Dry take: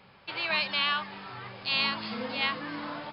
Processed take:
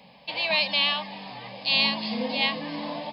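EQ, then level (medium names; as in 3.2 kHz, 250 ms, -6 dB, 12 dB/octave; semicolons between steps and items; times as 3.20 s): high-pass 53 Hz; hum notches 50/100/150/200 Hz; static phaser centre 370 Hz, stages 6; +8.0 dB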